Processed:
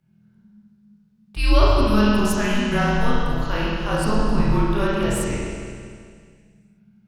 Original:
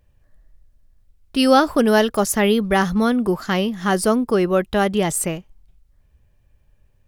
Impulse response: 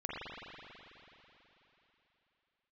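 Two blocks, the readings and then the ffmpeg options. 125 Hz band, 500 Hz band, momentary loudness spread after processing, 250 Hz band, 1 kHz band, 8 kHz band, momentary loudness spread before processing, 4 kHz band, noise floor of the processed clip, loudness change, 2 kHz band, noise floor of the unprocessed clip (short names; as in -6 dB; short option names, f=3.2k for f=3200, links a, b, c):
+4.5 dB, -5.5 dB, 12 LU, -3.0 dB, -3.5 dB, -7.5 dB, 7 LU, -3.0 dB, -58 dBFS, -2.5 dB, -2.0 dB, -59 dBFS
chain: -filter_complex "[0:a]afreqshift=-220[a];[1:a]atrim=start_sample=2205,asetrate=74970,aresample=44100[b];[a][b]afir=irnorm=-1:irlink=0"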